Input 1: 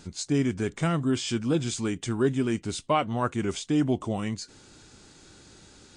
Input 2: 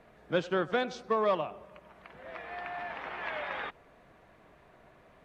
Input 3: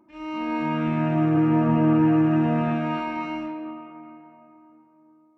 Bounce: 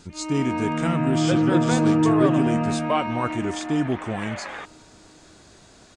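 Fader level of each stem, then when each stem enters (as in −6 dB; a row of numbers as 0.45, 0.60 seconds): +0.5, +2.0, −0.5 decibels; 0.00, 0.95, 0.00 seconds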